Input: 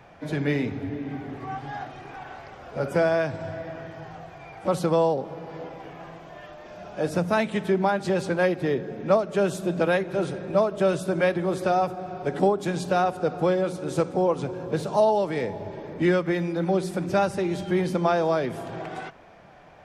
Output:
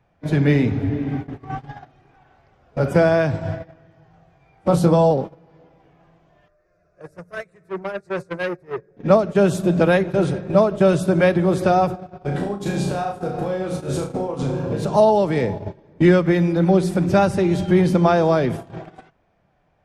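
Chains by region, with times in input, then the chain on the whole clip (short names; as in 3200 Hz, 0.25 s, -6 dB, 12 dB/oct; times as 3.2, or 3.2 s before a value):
4.11–5.11 dynamic EQ 2100 Hz, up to -5 dB, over -40 dBFS, Q 0.95 + doubler 23 ms -5.5 dB
6.48–8.97 flange 1.3 Hz, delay 4.7 ms, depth 1.5 ms, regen +50% + fixed phaser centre 860 Hz, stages 6 + core saturation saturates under 1300 Hz
12.2–14.85 doubler 15 ms -8 dB + compressor 16:1, threshold -28 dBFS + flutter echo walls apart 6 m, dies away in 0.53 s
whole clip: low shelf 190 Hz +11 dB; gate -29 dBFS, range -21 dB; gain +4.5 dB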